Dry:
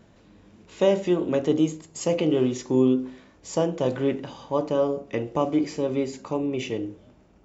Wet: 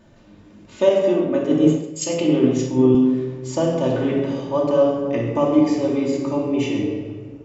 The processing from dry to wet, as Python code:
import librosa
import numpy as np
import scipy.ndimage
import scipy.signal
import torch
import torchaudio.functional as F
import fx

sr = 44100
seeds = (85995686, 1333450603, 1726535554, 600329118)

y = fx.room_shoebox(x, sr, seeds[0], volume_m3=1800.0, walls='mixed', distance_m=2.6)
y = fx.band_widen(y, sr, depth_pct=100, at=(0.89, 2.95))